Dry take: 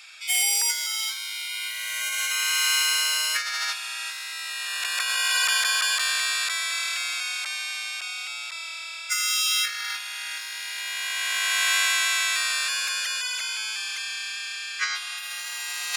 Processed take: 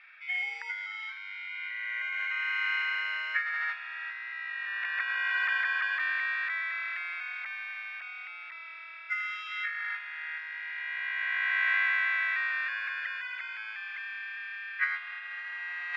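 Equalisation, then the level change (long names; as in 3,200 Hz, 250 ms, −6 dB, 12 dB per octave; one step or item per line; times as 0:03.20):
high-pass filter 440 Hz 6 dB per octave
transistor ladder low-pass 2,100 Hz, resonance 65%
+2.0 dB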